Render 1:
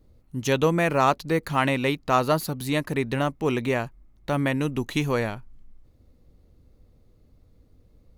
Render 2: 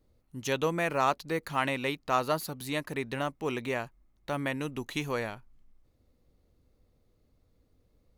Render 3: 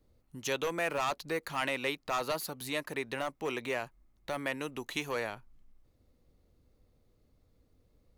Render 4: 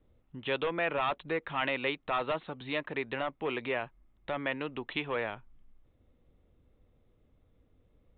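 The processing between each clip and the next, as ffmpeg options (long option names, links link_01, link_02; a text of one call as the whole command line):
ffmpeg -i in.wav -af "lowshelf=frequency=340:gain=-7,volume=-5dB" out.wav
ffmpeg -i in.wav -filter_complex "[0:a]acrossover=split=330|1900[link_01][link_02][link_03];[link_01]acompressor=threshold=-46dB:ratio=6[link_04];[link_02]asoftclip=type=hard:threshold=-29.5dB[link_05];[link_04][link_05][link_03]amix=inputs=3:normalize=0" out.wav
ffmpeg -i in.wav -af "aresample=8000,aresample=44100,volume=1.5dB" out.wav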